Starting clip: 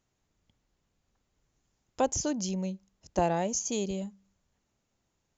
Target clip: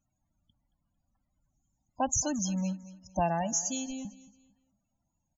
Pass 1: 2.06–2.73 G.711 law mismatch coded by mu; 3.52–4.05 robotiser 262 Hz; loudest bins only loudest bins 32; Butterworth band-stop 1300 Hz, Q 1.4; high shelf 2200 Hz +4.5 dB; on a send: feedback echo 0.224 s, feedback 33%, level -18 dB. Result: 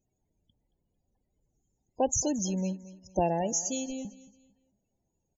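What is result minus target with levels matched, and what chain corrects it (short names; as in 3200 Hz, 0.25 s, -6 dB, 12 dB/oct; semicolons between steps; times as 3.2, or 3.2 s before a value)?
500 Hz band +3.5 dB
2.06–2.73 G.711 law mismatch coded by mu; 3.52–4.05 robotiser 262 Hz; loudest bins only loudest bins 32; Butterworth band-stop 420 Hz, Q 1.4; high shelf 2200 Hz +4.5 dB; on a send: feedback echo 0.224 s, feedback 33%, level -18 dB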